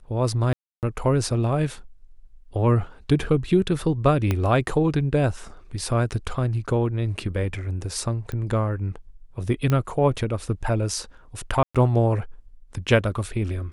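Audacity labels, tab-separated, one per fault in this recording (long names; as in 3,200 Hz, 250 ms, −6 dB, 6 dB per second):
0.530000	0.830000	drop-out 298 ms
4.310000	4.310000	click −10 dBFS
8.320000	8.320000	click −20 dBFS
9.700000	9.700000	click −11 dBFS
11.630000	11.750000	drop-out 116 ms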